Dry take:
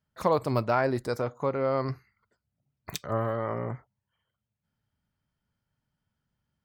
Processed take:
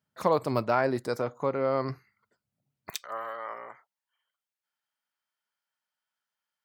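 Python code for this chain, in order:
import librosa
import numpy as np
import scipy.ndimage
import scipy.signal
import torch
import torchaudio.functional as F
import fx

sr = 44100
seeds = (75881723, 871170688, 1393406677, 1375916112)

y = fx.highpass(x, sr, hz=fx.steps((0.0, 140.0), (2.9, 950.0)), slope=12)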